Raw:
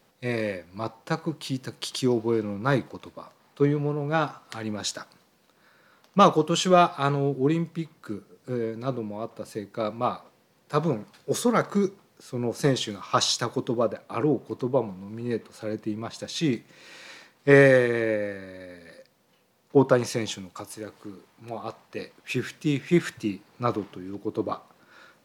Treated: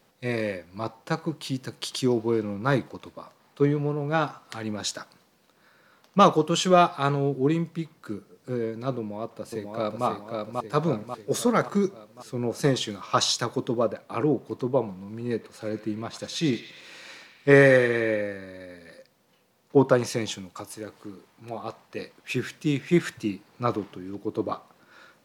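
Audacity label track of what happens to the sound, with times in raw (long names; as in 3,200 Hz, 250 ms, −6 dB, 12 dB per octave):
8.980000	10.060000	delay throw 540 ms, feedback 55%, level −3.5 dB
15.340000	18.220000	feedback echo with a band-pass in the loop 100 ms, feedback 73%, band-pass 2,600 Hz, level −8 dB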